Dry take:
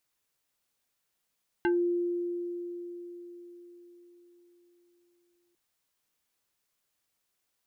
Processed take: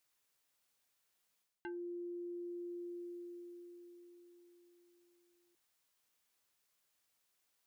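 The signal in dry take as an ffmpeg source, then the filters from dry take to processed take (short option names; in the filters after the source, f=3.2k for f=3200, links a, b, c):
-f lavfi -i "aevalsrc='0.0794*pow(10,-3*t/4.66)*sin(2*PI*349*t+1.2*pow(10,-3*t/0.18)*sin(2*PI*3.47*349*t))':d=3.9:s=44100"
-af "areverse,acompressor=threshold=-40dB:ratio=10,areverse,lowshelf=f=410:g=-5"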